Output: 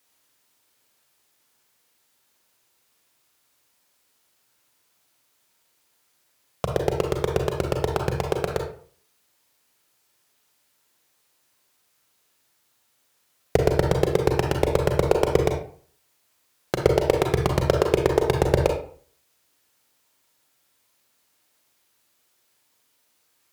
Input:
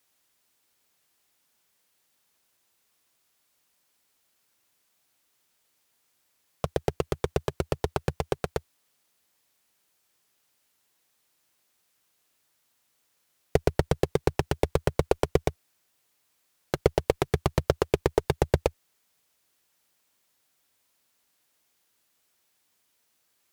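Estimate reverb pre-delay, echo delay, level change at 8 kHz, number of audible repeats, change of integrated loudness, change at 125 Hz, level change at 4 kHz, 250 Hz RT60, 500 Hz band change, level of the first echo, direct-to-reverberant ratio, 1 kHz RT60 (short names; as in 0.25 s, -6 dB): 33 ms, none, +4.0 dB, none, +5.0 dB, +4.5 dB, +4.5 dB, 0.50 s, +5.5 dB, none, 2.5 dB, 0.50 s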